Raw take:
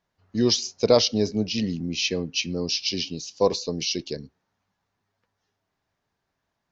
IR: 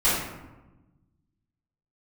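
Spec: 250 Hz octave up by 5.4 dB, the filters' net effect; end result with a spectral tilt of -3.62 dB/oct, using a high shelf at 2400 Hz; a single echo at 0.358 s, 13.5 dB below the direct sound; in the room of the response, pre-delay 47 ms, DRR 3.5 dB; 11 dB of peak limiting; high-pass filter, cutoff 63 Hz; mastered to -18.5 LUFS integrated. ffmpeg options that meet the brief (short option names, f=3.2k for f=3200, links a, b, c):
-filter_complex "[0:a]highpass=63,equalizer=f=250:t=o:g=6.5,highshelf=f=2.4k:g=7,alimiter=limit=-11.5dB:level=0:latency=1,aecho=1:1:358:0.211,asplit=2[a][b];[1:a]atrim=start_sample=2205,adelay=47[c];[b][c]afir=irnorm=-1:irlink=0,volume=-19.5dB[d];[a][d]amix=inputs=2:normalize=0,volume=3dB"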